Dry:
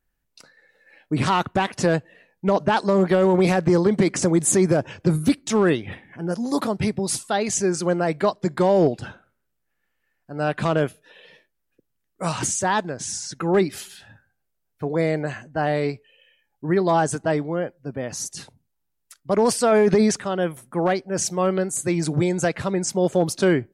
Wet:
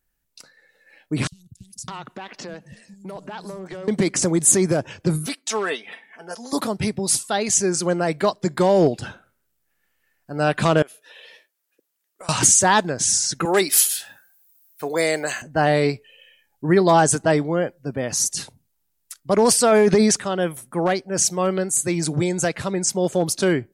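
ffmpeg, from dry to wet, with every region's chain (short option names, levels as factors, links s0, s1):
-filter_complex "[0:a]asettb=1/sr,asplit=3[s0][s1][s2];[s0]atrim=end=1.274[s3];[s1]atrim=start=1.27:end=3.88,asetpts=PTS-STARTPTS,afade=t=in:d=0.004:c=qsin,afade=t=out:st=2.606:d=0.004:c=qsin,acompressor=threshold=0.0398:ratio=12:attack=3.2:release=140:knee=1:detection=peak,acrossover=split=170|5600[s4][s5][s6];[s4]adelay=50[s7];[s5]adelay=610[s8];[s7][s8][s6]amix=inputs=3:normalize=0,atrim=end_sample=115101[s9];[s2]atrim=start=3.876[s10];[s3][s9]acrossfade=d=0.004:c1=hsin:c2=qsin[s11];[s11][s10]acrossfade=d=0.004:c1=qsin:c2=hsin,asettb=1/sr,asplit=3[s12][s13][s14];[s12]atrim=end=5.264[s15];[s13]atrim=start=5.26:end=6.53,asetpts=PTS-STARTPTS,afade=t=in:d=0.004:c=qsin,afade=t=out:st=1.266:d=0.004:c=qsin,highpass=580,highshelf=f=8000:g=-6,aecho=1:1:4.5:0.58,atrim=end_sample=56007[s16];[s14]atrim=start=6.526[s17];[s15][s16]acrossfade=d=0.004:c1=hsin:c2=qsin[s18];[s18][s17]acrossfade=d=0.004:c1=qsin:c2=hsin,asettb=1/sr,asplit=3[s19][s20][s21];[s19]atrim=end=10.824[s22];[s20]atrim=start=10.82:end=12.29,asetpts=PTS-STARTPTS,afade=t=in:d=0.004:c=qsin,afade=t=out:st=1.466:d=0.004:c=qsin,highpass=470,acompressor=threshold=0.0112:ratio=16:attack=3.2:release=140:knee=1:detection=peak,aeval=exprs='(tanh(8.91*val(0)+0.45)-tanh(0.45))/8.91':c=same[s23];[s21]atrim=start=12.286[s24];[s22][s23]acrossfade=d=0.004:c1=hsin:c2=qsin[s25];[s25][s24]acrossfade=d=0.004:c1=qsin:c2=hsin,asettb=1/sr,asplit=3[s26][s27][s28];[s26]atrim=end=13.454[s29];[s27]atrim=start=13.45:end=15.42,asetpts=PTS-STARTPTS,afade=t=in:d=0.004:c=qsin,afade=t=out:st=1.966:d=0.004:c=qsin,highpass=f=350:p=1,aemphasis=mode=production:type=bsi[s30];[s28]atrim=start=15.416[s31];[s29][s30]acrossfade=d=0.004:c1=hsin:c2=qsin[s32];[s32][s31]acrossfade=d=0.004:c1=qsin:c2=hsin,highshelf=f=4000:g=8.5,dynaudnorm=f=460:g=21:m=3.76,volume=0.891"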